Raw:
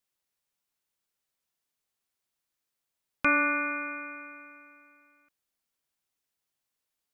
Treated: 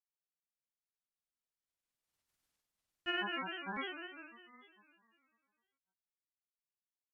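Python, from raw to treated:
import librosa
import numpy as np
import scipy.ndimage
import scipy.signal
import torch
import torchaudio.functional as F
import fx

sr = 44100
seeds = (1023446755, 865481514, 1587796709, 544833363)

y = fx.doppler_pass(x, sr, speed_mps=21, closest_m=3.2, pass_at_s=2.37)
y = fx.low_shelf(y, sr, hz=120.0, db=9.0)
y = y + 10.0 ** (-5.0 / 20.0) * np.pad(y, (int(561 * sr / 1000.0), 0))[:len(y)]
y = 10.0 ** (-23.5 / 20.0) * np.tanh(y / 10.0 ** (-23.5 / 20.0))
y = fx.granulator(y, sr, seeds[0], grain_ms=100.0, per_s=20.0, spray_ms=100.0, spread_st=7)
y = fx.env_lowpass_down(y, sr, base_hz=2900.0, full_db=-34.5)
y = F.gain(torch.from_numpy(y), 3.5).numpy()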